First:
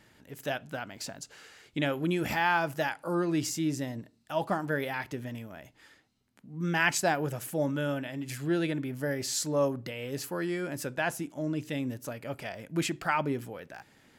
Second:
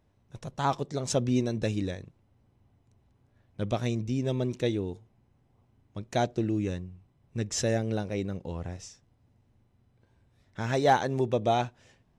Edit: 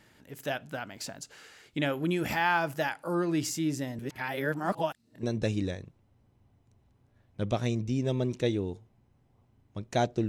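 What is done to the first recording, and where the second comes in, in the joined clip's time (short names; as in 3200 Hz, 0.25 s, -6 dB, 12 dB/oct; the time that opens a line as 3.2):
first
3.99–5.23 reverse
5.23 switch to second from 1.43 s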